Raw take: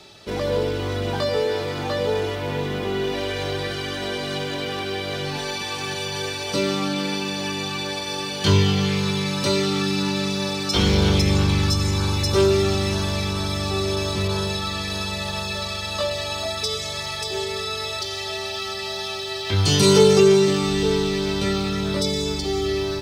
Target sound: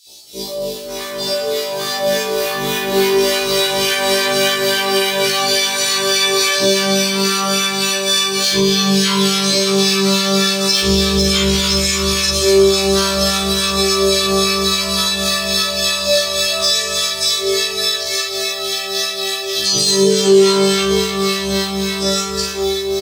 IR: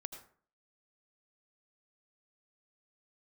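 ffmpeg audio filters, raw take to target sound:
-filter_complex "[0:a]aemphasis=mode=production:type=75fm,acrossover=split=7200[link_01][link_02];[link_02]acompressor=threshold=-38dB:ratio=4:attack=1:release=60[link_03];[link_01][link_03]amix=inputs=2:normalize=0,lowshelf=frequency=340:gain=-11.5,dynaudnorm=framelen=390:gausssize=11:maxgain=11.5dB,aeval=exprs='0.596*(abs(mod(val(0)/0.596+3,4)-2)-1)':channel_layout=same,acrossover=split=990[link_04][link_05];[link_04]aeval=exprs='val(0)*(1-0.7/2+0.7/2*cos(2*PI*3.5*n/s))':channel_layout=same[link_06];[link_05]aeval=exprs='val(0)*(1-0.7/2-0.7/2*cos(2*PI*3.5*n/s))':channel_layout=same[link_07];[link_06][link_07]amix=inputs=2:normalize=0,asplit=2[link_08][link_09];[link_09]adelay=41,volume=-3dB[link_10];[link_08][link_10]amix=inputs=2:normalize=0,acrossover=split=810|3300[link_11][link_12][link_13];[link_11]adelay=80[link_14];[link_12]adelay=610[link_15];[link_14][link_15][link_13]amix=inputs=3:normalize=0,asplit=2[link_16][link_17];[1:a]atrim=start_sample=2205,adelay=114[link_18];[link_17][link_18]afir=irnorm=-1:irlink=0,volume=-11dB[link_19];[link_16][link_19]amix=inputs=2:normalize=0,alimiter=level_in=10dB:limit=-1dB:release=50:level=0:latency=1,afftfilt=real='re*1.73*eq(mod(b,3),0)':imag='im*1.73*eq(mod(b,3),0)':win_size=2048:overlap=0.75,volume=-2.5dB"

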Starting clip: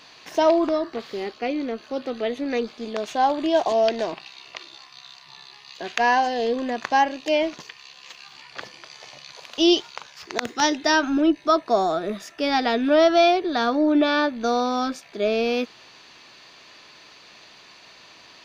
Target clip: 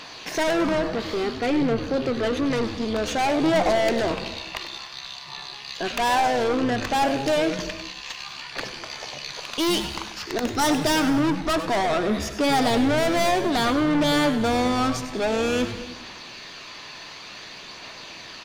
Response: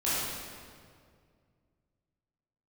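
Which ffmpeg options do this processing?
-filter_complex "[0:a]aeval=exprs='(tanh(25.1*val(0)+0.2)-tanh(0.2))/25.1':channel_layout=same,aphaser=in_gain=1:out_gain=1:delay=1.2:decay=0.23:speed=0.56:type=triangular,asplit=5[link_01][link_02][link_03][link_04][link_05];[link_02]adelay=98,afreqshift=-140,volume=-11dB[link_06];[link_03]adelay=196,afreqshift=-280,volume=-18.3dB[link_07];[link_04]adelay=294,afreqshift=-420,volume=-25.7dB[link_08];[link_05]adelay=392,afreqshift=-560,volume=-33dB[link_09];[link_01][link_06][link_07][link_08][link_09]amix=inputs=5:normalize=0,asplit=2[link_10][link_11];[1:a]atrim=start_sample=2205,afade=type=out:start_time=0.31:duration=0.01,atrim=end_sample=14112,asetrate=28224,aresample=44100[link_12];[link_11][link_12]afir=irnorm=-1:irlink=0,volume=-25dB[link_13];[link_10][link_13]amix=inputs=2:normalize=0,volume=7.5dB"

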